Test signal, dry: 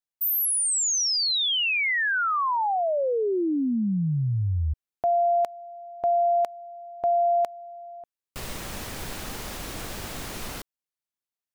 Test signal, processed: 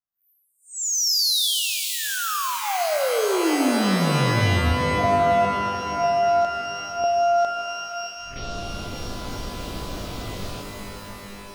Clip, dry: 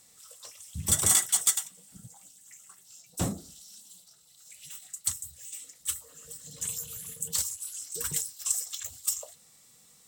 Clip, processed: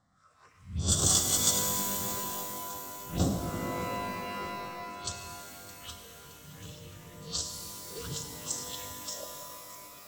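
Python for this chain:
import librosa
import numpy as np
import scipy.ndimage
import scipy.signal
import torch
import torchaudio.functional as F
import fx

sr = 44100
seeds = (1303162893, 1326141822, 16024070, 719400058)

p1 = fx.spec_swells(x, sr, rise_s=0.35)
p2 = scipy.signal.sosfilt(scipy.signal.butter(2, 9300.0, 'lowpass', fs=sr, output='sos'), p1)
p3 = fx.notch(p2, sr, hz=900.0, q=5.8)
p4 = fx.env_phaser(p3, sr, low_hz=410.0, high_hz=2100.0, full_db=-30.0)
p5 = fx.env_lowpass(p4, sr, base_hz=1500.0, full_db=-25.0)
p6 = p5 + fx.echo_feedback(p5, sr, ms=617, feedback_pct=50, wet_db=-17, dry=0)
p7 = fx.rev_shimmer(p6, sr, seeds[0], rt60_s=3.5, semitones=12, shimmer_db=-2, drr_db=4.0)
y = p7 * 10.0 ** (1.5 / 20.0)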